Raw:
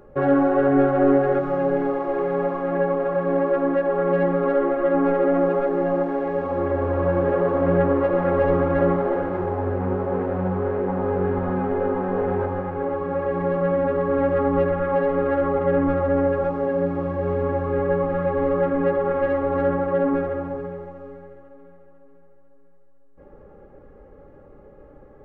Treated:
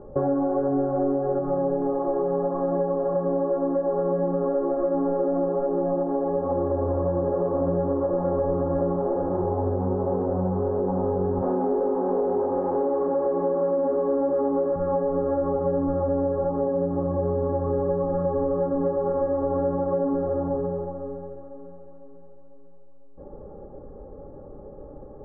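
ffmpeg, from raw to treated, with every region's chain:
-filter_complex "[0:a]asettb=1/sr,asplit=3[a][b][c];[a]atrim=end=11.424[d];[b]atrim=start=11.42:end=14.76,asetpts=PTS-STARTPTS,afade=t=in:d=0.004:c=qsin,afade=t=out:st=3.336:d=0.004:c=qsin,aeval=exprs='val(0)+0.5*0.0531*sgn(val(0))':c=same,acrossover=split=2700[e][f];[f]acompressor=threshold=-46dB:ratio=4:attack=1:release=60[g];[e][g]amix=inputs=2:normalize=0,lowshelf=f=190:t=q:w=1.5:g=-14[h];[c]atrim=start=14.756[i];[d][h]acrossfade=d=0.004:c1=hsin:c2=qsin[j];[j][i]acrossfade=d=0.004:c1=qsin:c2=hsin,lowpass=f=1k:w=0.5412,lowpass=f=1k:w=1.3066,acompressor=threshold=-27dB:ratio=6,volume=5.5dB"

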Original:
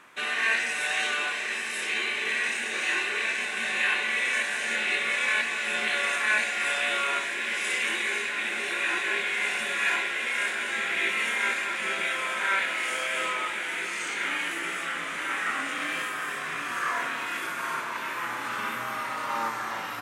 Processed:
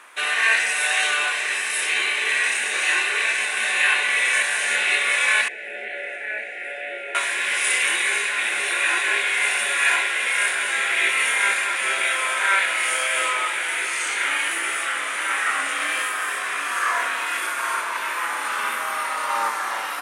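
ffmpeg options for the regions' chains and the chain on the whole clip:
-filter_complex "[0:a]asettb=1/sr,asplit=3[a][b][c];[a]atrim=end=5.484[d];[b]atrim=start=5.48:end=7.15,asetpts=PTS-STARTPTS,afade=t=in:d=0.004:c=qsin,afade=t=out:st=1.666:d=0.004:c=qsin,acrossover=split=2500[e][f];[f]acompressor=threshold=-45dB:ratio=4:attack=1:release=60[g];[e][g]amix=inputs=2:normalize=0,asuperstop=centerf=1100:order=4:qfactor=0.82,acrossover=split=260 2100:gain=0.178 1 0.126[h][i][j];[h][i][j]amix=inputs=3:normalize=0[k];[c]atrim=start=7.146[l];[d][k]acrossfade=d=0.004:c1=hsin:c2=qsin[m];[m][l]acrossfade=d=0.004:c1=qsin:c2=hsin,highpass=500,equalizer=f=9.5k:w=4:g=11.5,volume=6.5dB"

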